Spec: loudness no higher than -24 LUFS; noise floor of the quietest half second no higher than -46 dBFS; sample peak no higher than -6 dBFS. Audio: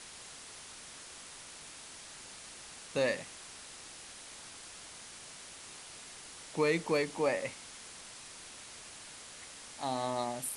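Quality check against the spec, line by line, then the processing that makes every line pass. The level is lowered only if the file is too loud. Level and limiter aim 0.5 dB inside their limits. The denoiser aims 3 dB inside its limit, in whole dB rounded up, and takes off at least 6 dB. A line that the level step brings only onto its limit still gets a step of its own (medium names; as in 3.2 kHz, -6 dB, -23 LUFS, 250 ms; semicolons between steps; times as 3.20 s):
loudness -39.0 LUFS: pass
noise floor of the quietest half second -50 dBFS: pass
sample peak -17.5 dBFS: pass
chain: none needed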